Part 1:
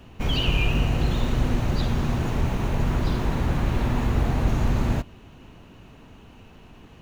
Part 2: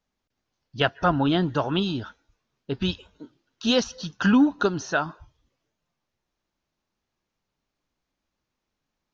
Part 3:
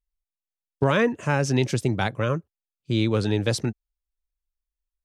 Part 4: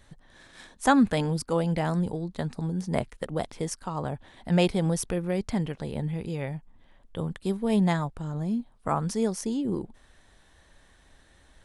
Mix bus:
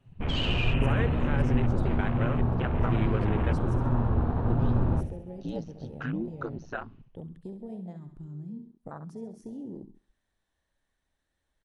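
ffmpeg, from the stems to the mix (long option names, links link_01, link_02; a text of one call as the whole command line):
ffmpeg -i stem1.wav -i stem2.wav -i stem3.wav -i stem4.wav -filter_complex "[0:a]lowpass=frequency=4000:width=0.5412,lowpass=frequency=4000:width=1.3066,flanger=delay=7.3:depth=5.3:regen=-13:speed=1.3:shape=sinusoidal,volume=-1dB,asplit=2[link_01][link_02];[link_02]volume=-6.5dB[link_03];[1:a]acompressor=threshold=-26dB:ratio=3,aeval=exprs='val(0)*sin(2*PI*58*n/s)':channel_layout=same,adelay=1800,volume=-4dB[link_04];[2:a]alimiter=limit=-15dB:level=0:latency=1:release=353,equalizer=frequency=1500:width_type=o:width=0.77:gain=3.5,volume=-6dB,asplit=2[link_05][link_06];[3:a]acompressor=threshold=-31dB:ratio=6,volume=-6.5dB,asplit=2[link_07][link_08];[link_08]volume=-9dB[link_09];[link_06]apad=whole_len=482036[link_10];[link_04][link_10]sidechaincompress=threshold=-37dB:ratio=8:attack=16:release=322[link_11];[link_03][link_09]amix=inputs=2:normalize=0,aecho=0:1:67|134|201|268|335|402|469|536:1|0.52|0.27|0.141|0.0731|0.038|0.0198|0.0103[link_12];[link_01][link_11][link_05][link_07][link_12]amix=inputs=5:normalize=0,afwtdn=0.0141" out.wav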